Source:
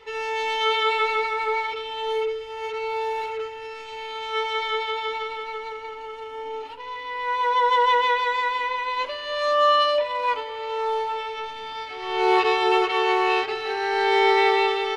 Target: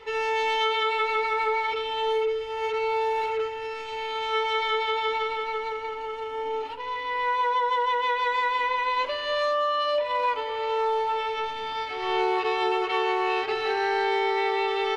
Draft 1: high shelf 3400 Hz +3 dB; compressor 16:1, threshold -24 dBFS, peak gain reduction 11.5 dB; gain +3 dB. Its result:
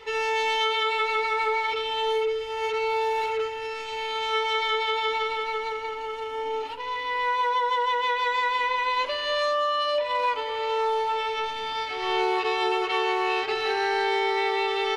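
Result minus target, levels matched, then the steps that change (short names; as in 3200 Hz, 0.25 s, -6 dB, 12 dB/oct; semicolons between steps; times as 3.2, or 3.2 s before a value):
8000 Hz band +4.5 dB
change: high shelf 3400 Hz -4 dB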